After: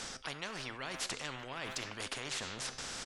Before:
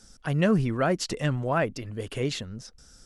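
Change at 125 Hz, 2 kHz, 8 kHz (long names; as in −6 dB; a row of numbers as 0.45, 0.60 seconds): −23.0, −7.0, −1.0 decibels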